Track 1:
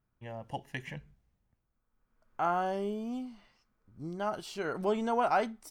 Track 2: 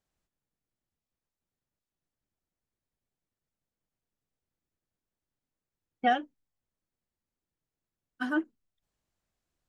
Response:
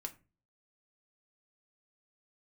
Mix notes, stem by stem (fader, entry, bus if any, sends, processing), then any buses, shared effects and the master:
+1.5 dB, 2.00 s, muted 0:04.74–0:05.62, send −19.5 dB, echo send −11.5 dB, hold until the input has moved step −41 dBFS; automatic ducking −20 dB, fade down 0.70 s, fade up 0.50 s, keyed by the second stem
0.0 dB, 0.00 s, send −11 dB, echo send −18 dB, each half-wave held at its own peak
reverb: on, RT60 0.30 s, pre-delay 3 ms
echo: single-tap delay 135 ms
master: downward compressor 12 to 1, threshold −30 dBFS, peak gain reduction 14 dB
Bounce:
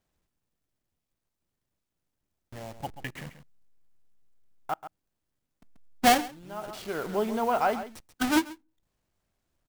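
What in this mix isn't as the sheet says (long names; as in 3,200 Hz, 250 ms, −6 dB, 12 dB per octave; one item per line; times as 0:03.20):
stem 1: entry 2.00 s → 2.30 s
master: missing downward compressor 12 to 1, threshold −30 dBFS, peak gain reduction 14 dB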